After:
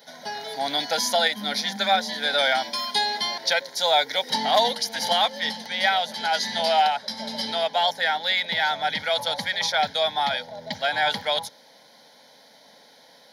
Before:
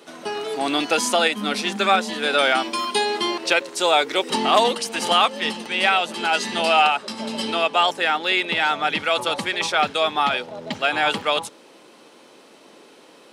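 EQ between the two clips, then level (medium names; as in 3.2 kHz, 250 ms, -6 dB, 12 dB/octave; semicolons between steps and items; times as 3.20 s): treble shelf 3.6 kHz +8.5 dB; static phaser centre 1.8 kHz, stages 8; -1.5 dB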